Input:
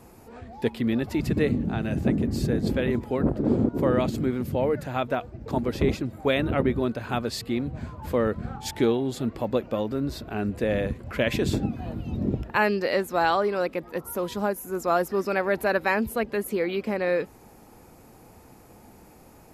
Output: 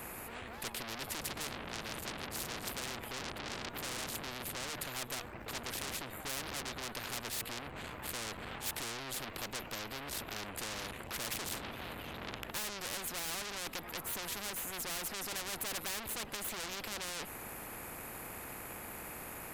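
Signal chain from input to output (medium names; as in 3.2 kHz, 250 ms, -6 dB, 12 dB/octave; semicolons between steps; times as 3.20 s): peaking EQ 5.4 kHz -14.5 dB 1.1 oct; valve stage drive 35 dB, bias 0.6; spectrum-flattening compressor 4:1; trim +10.5 dB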